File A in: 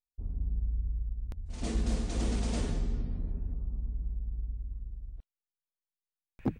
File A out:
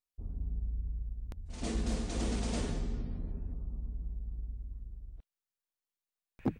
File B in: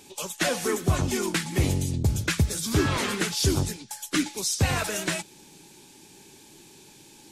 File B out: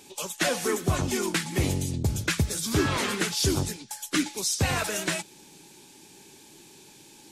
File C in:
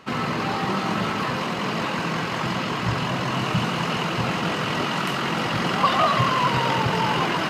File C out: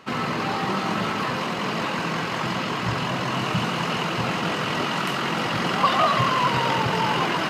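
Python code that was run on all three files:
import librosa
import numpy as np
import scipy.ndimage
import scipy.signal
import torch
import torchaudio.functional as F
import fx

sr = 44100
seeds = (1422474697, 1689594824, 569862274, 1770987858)

y = fx.low_shelf(x, sr, hz=120.0, db=-5.0)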